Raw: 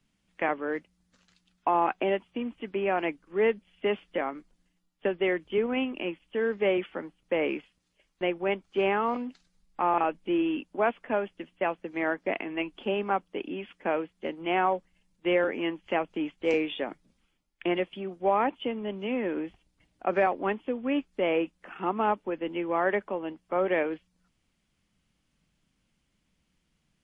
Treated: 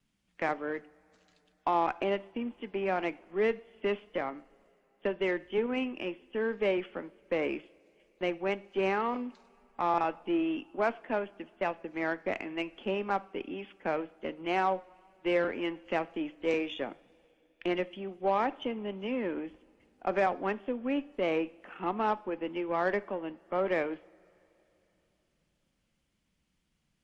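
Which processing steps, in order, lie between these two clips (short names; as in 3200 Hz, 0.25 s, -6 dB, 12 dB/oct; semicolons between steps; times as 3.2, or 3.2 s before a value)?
added harmonics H 6 -28 dB, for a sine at -13 dBFS; two-slope reverb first 0.55 s, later 3.6 s, from -18 dB, DRR 16.5 dB; vibrato 2 Hz 28 cents; gain -3.5 dB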